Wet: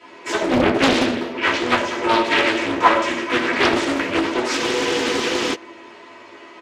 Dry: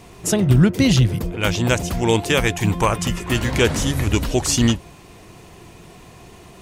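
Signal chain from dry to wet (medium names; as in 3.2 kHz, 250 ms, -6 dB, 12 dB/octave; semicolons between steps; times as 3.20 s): comb filter that takes the minimum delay 3.1 ms; high-pass 600 Hz 12 dB/octave; peaking EQ 770 Hz -10.5 dB 0.26 oct; wavefolder -13 dBFS; tape spacing loss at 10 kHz 20 dB; doubling 12 ms -6 dB; reverberation RT60 0.85 s, pre-delay 3 ms, DRR -6 dB; spectral freeze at 4.60 s, 0.93 s; loudspeaker Doppler distortion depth 0.85 ms; trim -5 dB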